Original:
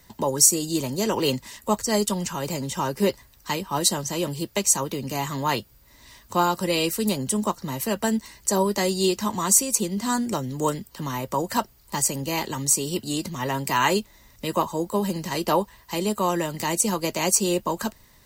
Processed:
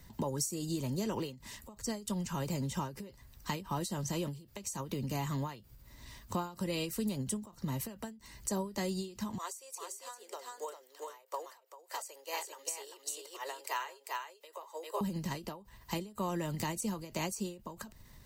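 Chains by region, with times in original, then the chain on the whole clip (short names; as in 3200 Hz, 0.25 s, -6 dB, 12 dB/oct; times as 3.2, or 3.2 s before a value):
9.38–15.01 steep high-pass 420 Hz 48 dB/oct + echo 0.395 s -3 dB + upward expander, over -35 dBFS
whole clip: tone controls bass +8 dB, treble -1 dB; compressor 5:1, threshold -28 dBFS; ending taper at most 130 dB/s; gain -4.5 dB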